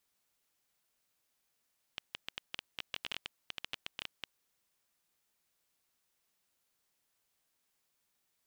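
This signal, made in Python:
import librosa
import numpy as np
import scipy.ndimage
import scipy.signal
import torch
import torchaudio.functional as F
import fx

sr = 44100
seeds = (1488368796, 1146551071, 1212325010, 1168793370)

y = fx.geiger_clicks(sr, seeds[0], length_s=2.37, per_s=12.0, level_db=-20.5)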